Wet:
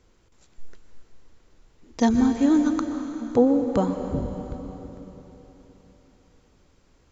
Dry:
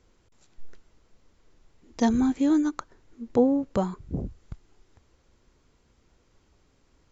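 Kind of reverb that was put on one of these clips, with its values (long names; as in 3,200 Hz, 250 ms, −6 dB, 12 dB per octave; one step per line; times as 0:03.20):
dense smooth reverb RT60 3.8 s, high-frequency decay 0.95×, pre-delay 110 ms, DRR 6 dB
level +2.5 dB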